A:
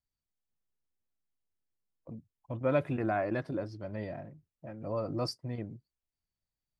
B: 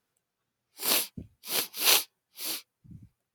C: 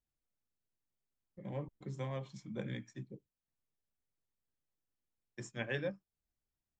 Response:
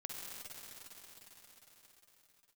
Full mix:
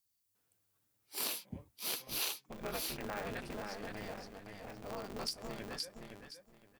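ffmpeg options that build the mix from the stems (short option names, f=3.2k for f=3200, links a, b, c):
-filter_complex "[0:a]acompressor=threshold=-36dB:ratio=2,crystalizer=i=9:c=0,aeval=exprs='val(0)*sgn(sin(2*PI*100*n/s))':c=same,volume=-7.5dB,asplit=2[a][b];[b]volume=-5dB[c];[1:a]adelay=350,volume=-3dB[d];[2:a]highpass=f=640:p=1,volume=-11.5dB,asplit=2[e][f];[f]volume=-7.5dB[g];[c][g]amix=inputs=2:normalize=0,aecho=0:1:517|1034|1551|2068:1|0.22|0.0484|0.0106[h];[a][d][e][h]amix=inputs=4:normalize=0,acompressor=threshold=-35dB:ratio=6"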